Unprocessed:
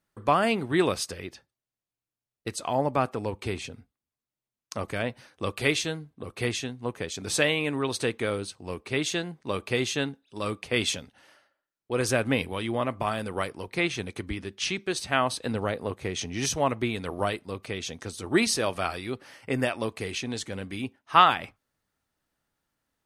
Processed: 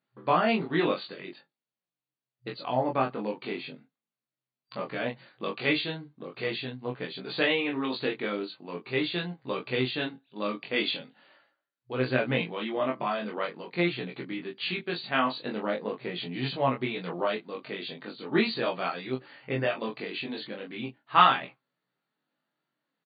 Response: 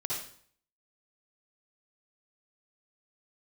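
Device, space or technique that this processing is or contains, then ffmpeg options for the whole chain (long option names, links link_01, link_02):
double-tracked vocal: -filter_complex "[0:a]asplit=2[link_01][link_02];[link_02]adelay=23,volume=-3.5dB[link_03];[link_01][link_03]amix=inputs=2:normalize=0,flanger=delay=15.5:depth=4.5:speed=0.42,afftfilt=real='re*between(b*sr/4096,120,4700)':imag='im*between(b*sr/4096,120,4700)':win_size=4096:overlap=0.75"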